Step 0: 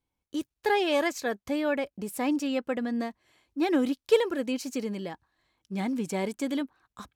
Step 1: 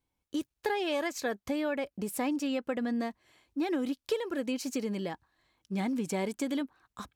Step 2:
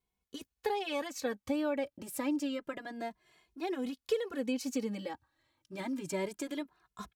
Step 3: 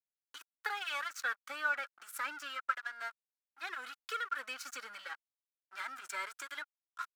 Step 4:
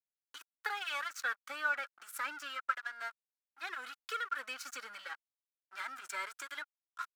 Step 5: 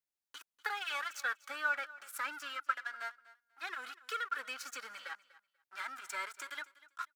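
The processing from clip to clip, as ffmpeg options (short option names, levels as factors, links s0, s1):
-af "acompressor=threshold=0.0355:ratio=6,volume=1.12"
-filter_complex "[0:a]asplit=2[s0][s1];[s1]adelay=2.4,afreqshift=0.28[s2];[s0][s2]amix=inputs=2:normalize=1"
-af "aeval=exprs='sgn(val(0))*max(abs(val(0))-0.00422,0)':c=same,highpass=f=1400:t=q:w=9.1"
-af anull
-af "aecho=1:1:244|488:0.112|0.0202"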